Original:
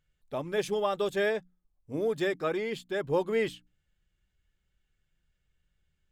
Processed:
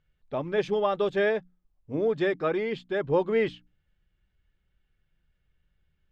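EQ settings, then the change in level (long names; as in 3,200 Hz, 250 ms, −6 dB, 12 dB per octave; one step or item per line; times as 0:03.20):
high-frequency loss of the air 200 metres
+4.0 dB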